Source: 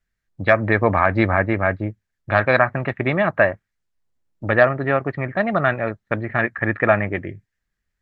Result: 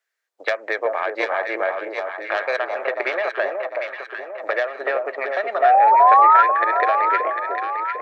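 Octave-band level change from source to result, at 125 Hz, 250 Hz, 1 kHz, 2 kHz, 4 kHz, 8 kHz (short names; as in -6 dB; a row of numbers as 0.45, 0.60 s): under -40 dB, -16.0 dB, +8.5 dB, -3.0 dB, +1.5 dB, n/a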